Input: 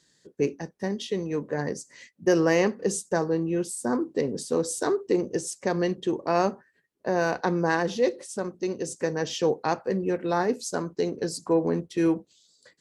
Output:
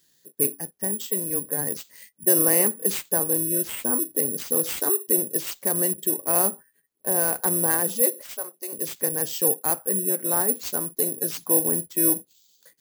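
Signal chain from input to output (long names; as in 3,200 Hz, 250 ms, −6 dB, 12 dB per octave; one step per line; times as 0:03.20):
0:08.21–0:08.73: Chebyshev high-pass filter 630 Hz, order 2
bad sample-rate conversion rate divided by 4×, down none, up zero stuff
level −4 dB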